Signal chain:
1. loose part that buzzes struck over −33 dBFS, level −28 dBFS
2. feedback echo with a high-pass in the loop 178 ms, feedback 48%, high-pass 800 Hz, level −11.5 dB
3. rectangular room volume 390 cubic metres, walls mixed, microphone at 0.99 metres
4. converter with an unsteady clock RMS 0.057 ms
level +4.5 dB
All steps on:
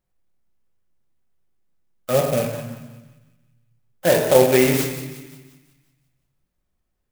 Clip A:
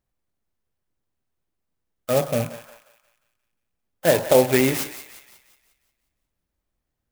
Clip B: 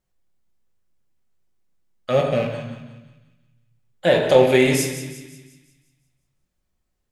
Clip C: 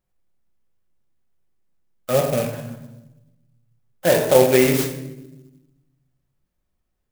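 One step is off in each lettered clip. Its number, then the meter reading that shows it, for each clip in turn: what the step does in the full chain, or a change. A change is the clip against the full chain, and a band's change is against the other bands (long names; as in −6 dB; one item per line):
3, change in momentary loudness spread −2 LU
4, 8 kHz band −2.5 dB
2, change in momentary loudness spread +2 LU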